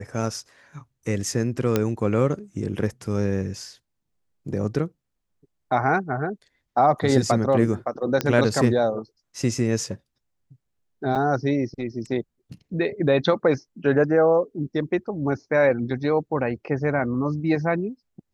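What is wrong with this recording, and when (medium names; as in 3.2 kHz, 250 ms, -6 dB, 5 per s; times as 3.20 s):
1.76 s: pop -7 dBFS
8.21 s: pop -8 dBFS
11.15–11.16 s: dropout 6.5 ms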